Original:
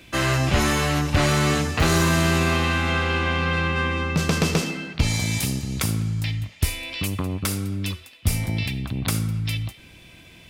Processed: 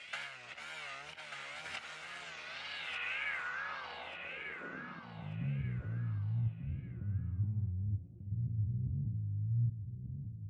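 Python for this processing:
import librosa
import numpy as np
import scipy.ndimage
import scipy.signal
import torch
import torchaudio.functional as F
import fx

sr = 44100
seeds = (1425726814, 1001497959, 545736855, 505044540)

p1 = fx.lower_of_two(x, sr, delay_ms=1.4)
p2 = scipy.signal.sosfilt(scipy.signal.butter(2, 50.0, 'highpass', fs=sr, output='sos'), p1)
p3 = fx.high_shelf(p2, sr, hz=4000.0, db=-11.5)
p4 = fx.over_compress(p3, sr, threshold_db=-34.0, ratio=-1.0)
p5 = fx.filter_sweep_lowpass(p4, sr, from_hz=9000.0, to_hz=110.0, start_s=2.12, end_s=5.58, q=3.1)
p6 = fx.wow_flutter(p5, sr, seeds[0], rate_hz=2.1, depth_cents=130.0)
p7 = fx.filter_sweep_bandpass(p6, sr, from_hz=2500.0, to_hz=270.0, start_s=4.87, end_s=5.43, q=1.2)
p8 = p7 + fx.echo_feedback(p7, sr, ms=1190, feedback_pct=26, wet_db=-6.5, dry=0)
y = p8 * librosa.db_to_amplitude(-2.0)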